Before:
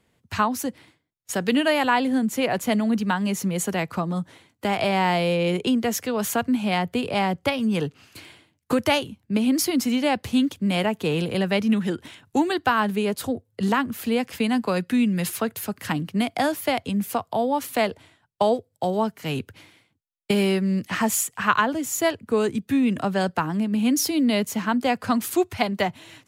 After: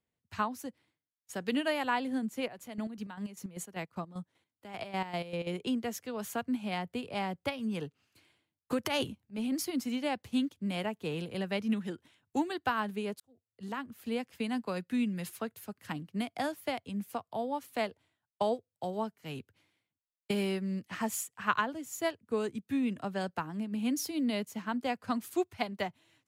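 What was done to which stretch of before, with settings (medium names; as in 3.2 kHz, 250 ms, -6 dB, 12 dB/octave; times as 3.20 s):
2.39–5.47 s: square tremolo 5.1 Hz, depth 60%, duty 45%
8.84–9.55 s: transient shaper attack -9 dB, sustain +11 dB
13.20–14.03 s: fade in
whole clip: upward expansion 1.5:1, over -42 dBFS; trim -8.5 dB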